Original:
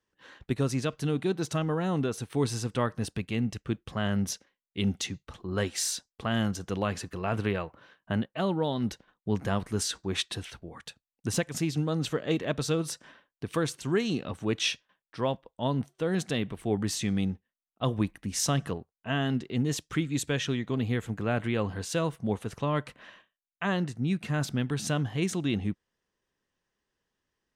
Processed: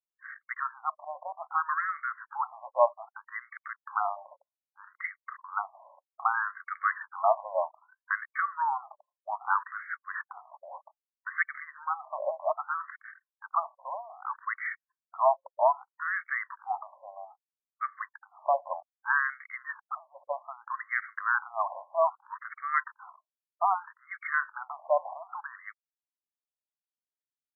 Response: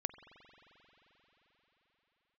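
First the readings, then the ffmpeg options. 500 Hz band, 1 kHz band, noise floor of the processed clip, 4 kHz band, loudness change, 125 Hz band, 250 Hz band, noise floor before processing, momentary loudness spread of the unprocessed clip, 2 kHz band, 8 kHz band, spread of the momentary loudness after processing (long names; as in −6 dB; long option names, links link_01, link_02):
−1.5 dB, +8.5 dB, below −85 dBFS, below −40 dB, −1.5 dB, below −40 dB, below −40 dB, below −85 dBFS, 7 LU, +5.5 dB, below −40 dB, 17 LU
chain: -af "acontrast=55,anlmdn=0.0631,afftfilt=real='re*between(b*sr/1024,770*pow(1600/770,0.5+0.5*sin(2*PI*0.63*pts/sr))/1.41,770*pow(1600/770,0.5+0.5*sin(2*PI*0.63*pts/sr))*1.41)':imag='im*between(b*sr/1024,770*pow(1600/770,0.5+0.5*sin(2*PI*0.63*pts/sr))/1.41,770*pow(1600/770,0.5+0.5*sin(2*PI*0.63*pts/sr))*1.41)':win_size=1024:overlap=0.75,volume=5dB"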